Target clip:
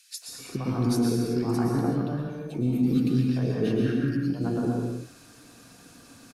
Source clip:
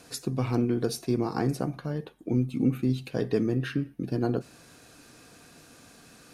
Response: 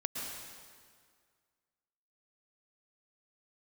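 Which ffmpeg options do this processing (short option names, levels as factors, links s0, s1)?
-filter_complex "[0:a]acrossover=split=570|2100[s0][s1][s2];[s1]adelay=220[s3];[s0]adelay=280[s4];[s4][s3][s2]amix=inputs=3:normalize=0[s5];[1:a]atrim=start_sample=2205,afade=t=out:st=0.44:d=0.01,atrim=end_sample=19845[s6];[s5][s6]afir=irnorm=-1:irlink=0"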